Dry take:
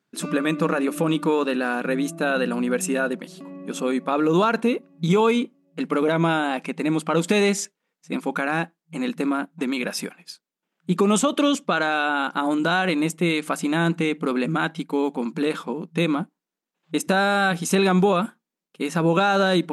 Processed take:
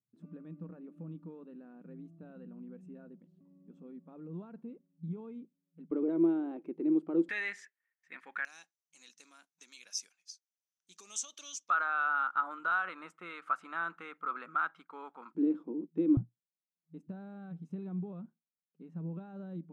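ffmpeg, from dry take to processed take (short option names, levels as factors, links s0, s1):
-af "asetnsamples=n=441:p=0,asendcmd='5.91 bandpass f 340;7.29 bandpass f 1800;8.45 bandpass f 6000;11.7 bandpass f 1300;15.35 bandpass f 310;16.17 bandpass f 120',bandpass=f=110:t=q:w=8.1:csg=0"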